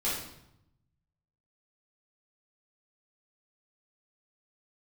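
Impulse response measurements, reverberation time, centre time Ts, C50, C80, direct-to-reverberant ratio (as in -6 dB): 0.80 s, 54 ms, 1.5 dB, 5.5 dB, -8.5 dB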